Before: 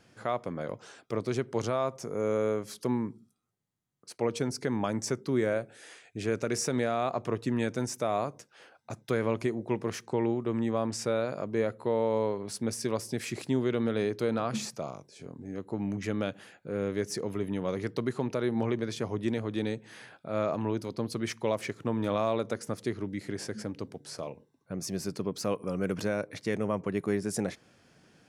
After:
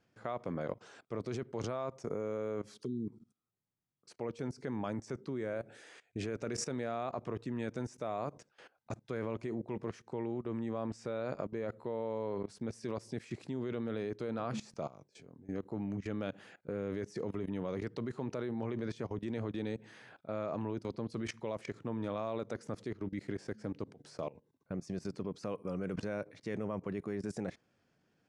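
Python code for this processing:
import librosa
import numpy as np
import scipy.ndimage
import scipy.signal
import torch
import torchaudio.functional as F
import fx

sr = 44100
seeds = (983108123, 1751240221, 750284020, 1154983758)

y = fx.spec_erase(x, sr, start_s=2.85, length_s=0.23, low_hz=470.0, high_hz=3100.0)
y = scipy.signal.sosfilt(scipy.signal.butter(4, 9100.0, 'lowpass', fs=sr, output='sos'), y)
y = fx.high_shelf(y, sr, hz=3300.0, db=-6.0)
y = fx.level_steps(y, sr, step_db=19)
y = F.gain(torch.from_numpy(y), 1.0).numpy()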